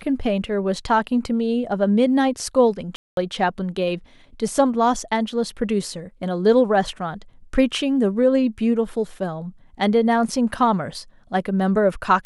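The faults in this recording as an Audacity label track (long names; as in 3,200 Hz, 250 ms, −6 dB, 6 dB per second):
2.960000	3.170000	drop-out 212 ms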